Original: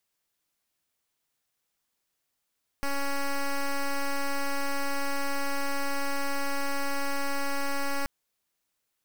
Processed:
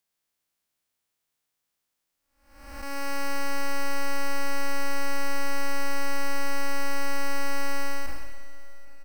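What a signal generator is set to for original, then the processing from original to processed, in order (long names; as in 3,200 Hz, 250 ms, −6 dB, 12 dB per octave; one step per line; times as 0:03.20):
pulse wave 279 Hz, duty 8% −27.5 dBFS 5.23 s
spectrum smeared in time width 452 ms
repeating echo 787 ms, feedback 52%, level −22 dB
four-comb reverb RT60 2.5 s, combs from 29 ms, DRR 14 dB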